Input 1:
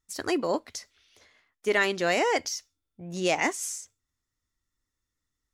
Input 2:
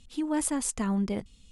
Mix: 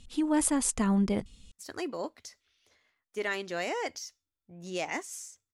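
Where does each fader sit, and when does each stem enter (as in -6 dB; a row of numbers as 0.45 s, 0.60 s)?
-8.5 dB, +2.0 dB; 1.50 s, 0.00 s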